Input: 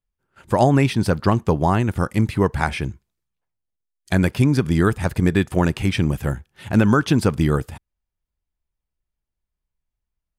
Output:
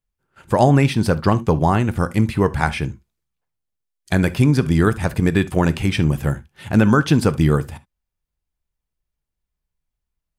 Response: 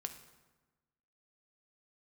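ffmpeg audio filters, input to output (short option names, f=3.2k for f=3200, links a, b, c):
-filter_complex "[0:a]asplit=2[a][b];[1:a]atrim=start_sample=2205,atrim=end_sample=3528[c];[b][c]afir=irnorm=-1:irlink=0,volume=4.5dB[d];[a][d]amix=inputs=2:normalize=0,volume=-5.5dB"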